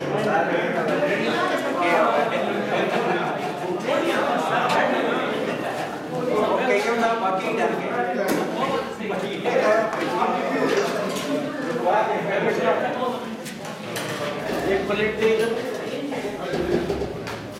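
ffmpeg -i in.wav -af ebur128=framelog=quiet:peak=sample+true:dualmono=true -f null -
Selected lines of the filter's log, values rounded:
Integrated loudness:
  I:         -20.1 LUFS
  Threshold: -30.0 LUFS
Loudness range:
  LRA:         2.5 LU
  Threshold: -40.0 LUFS
  LRA low:   -21.5 LUFS
  LRA high:  -18.9 LUFS
Sample peak:
  Peak:       -8.0 dBFS
True peak:
  Peak:       -8.0 dBFS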